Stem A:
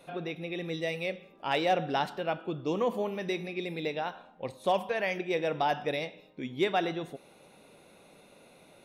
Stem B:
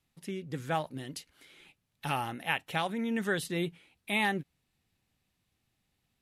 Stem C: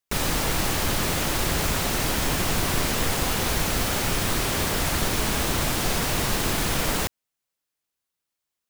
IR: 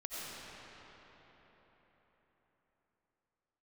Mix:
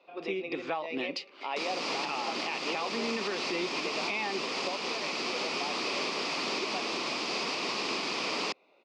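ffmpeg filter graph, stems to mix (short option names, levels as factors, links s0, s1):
-filter_complex "[0:a]volume=0.708[s0];[1:a]dynaudnorm=f=180:g=7:m=2.51,volume=1.33,asplit=2[s1][s2];[2:a]adelay=1450,volume=0.562[s3];[s2]apad=whole_len=390024[s4];[s0][s4]sidechaingate=range=0.447:threshold=0.00112:ratio=16:detection=peak[s5];[s5][s1]amix=inputs=2:normalize=0,asplit=2[s6][s7];[s7]highpass=f=720:p=1,volume=3.16,asoftclip=type=tanh:threshold=0.631[s8];[s6][s8]amix=inputs=2:normalize=0,lowpass=f=1300:p=1,volume=0.501,acompressor=threshold=0.0631:ratio=6,volume=1[s9];[s3][s9]amix=inputs=2:normalize=0,highpass=f=230:w=0.5412,highpass=f=230:w=1.3066,equalizer=f=400:t=q:w=4:g=4,equalizer=f=1100:t=q:w=4:g=6,equalizer=f=1600:t=q:w=4:g=-8,equalizer=f=2500:t=q:w=4:g=9,equalizer=f=4800:t=q:w=4:g=9,lowpass=f=5700:w=0.5412,lowpass=f=5700:w=1.3066,alimiter=limit=0.075:level=0:latency=1:release=280"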